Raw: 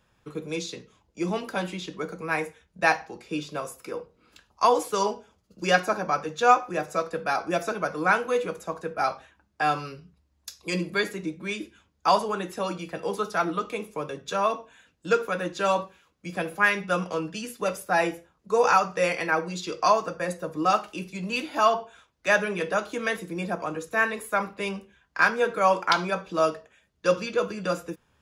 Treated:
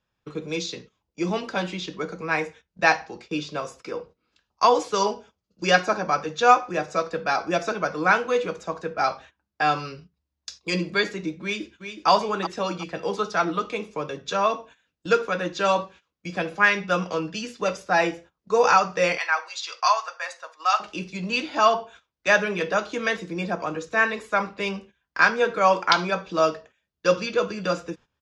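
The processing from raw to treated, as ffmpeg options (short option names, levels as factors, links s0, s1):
-filter_complex "[0:a]asplit=2[s0][s1];[s1]afade=t=in:st=11.42:d=0.01,afade=t=out:st=12.09:d=0.01,aecho=0:1:370|740|1110|1480:0.375837|0.112751|0.0338254|0.0101476[s2];[s0][s2]amix=inputs=2:normalize=0,asettb=1/sr,asplit=3[s3][s4][s5];[s3]atrim=end=19.184[s6];[s4]atrim=start=19.18:end=20.8,asetpts=PTS-STARTPTS,afade=t=in:d=0.004:c=qsin,afade=t=out:st=1.616:d=0.004:c=qsin,highpass=f=810:w=0.5412,highpass=f=810:w=1.3066[s7];[s5]atrim=start=20.796[s8];[s6][s7]acrossfade=d=0.004:c1=hsin:c2=qsin[s9];[s9][s8]acrossfade=d=0.004:c1=qsin:c2=hsin,agate=range=0.178:threshold=0.00447:ratio=16:detection=peak,lowpass=f=6000:w=0.5412,lowpass=f=6000:w=1.3066,highshelf=f=4200:g=6.5,volume=1.26"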